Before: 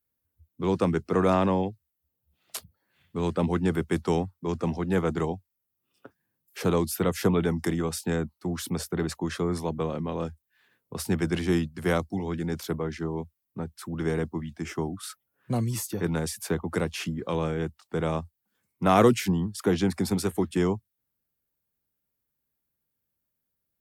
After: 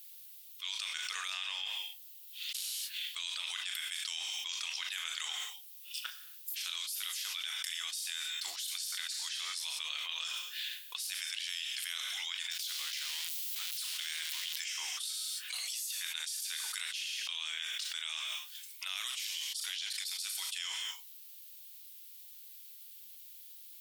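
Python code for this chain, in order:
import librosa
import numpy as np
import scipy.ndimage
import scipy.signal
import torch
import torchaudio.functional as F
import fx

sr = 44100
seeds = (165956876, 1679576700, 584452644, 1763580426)

y = fx.zero_step(x, sr, step_db=-35.0, at=(12.51, 14.56))
y = fx.ladder_highpass(y, sr, hz=2700.0, resonance_pct=40)
y = fx.doubler(y, sr, ms=38.0, db=-13.0)
y = fx.rev_gated(y, sr, seeds[0], gate_ms=300, shape='falling', drr_db=10.5)
y = fx.env_flatten(y, sr, amount_pct=100)
y = F.gain(torch.from_numpy(y), -2.5).numpy()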